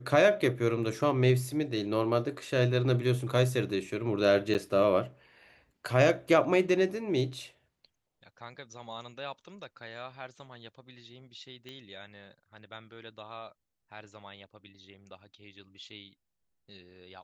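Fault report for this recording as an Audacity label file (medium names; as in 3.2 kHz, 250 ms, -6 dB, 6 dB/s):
4.540000	4.550000	dropout 8.4 ms
11.690000	11.690000	pop -30 dBFS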